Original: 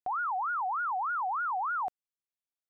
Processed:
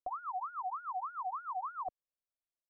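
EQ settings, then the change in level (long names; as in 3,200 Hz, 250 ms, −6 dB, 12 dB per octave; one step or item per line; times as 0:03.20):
low-pass filter 1,200 Hz 12 dB per octave
phaser with its sweep stopped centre 410 Hz, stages 6
phaser with its sweep stopped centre 840 Hz, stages 6
+5.5 dB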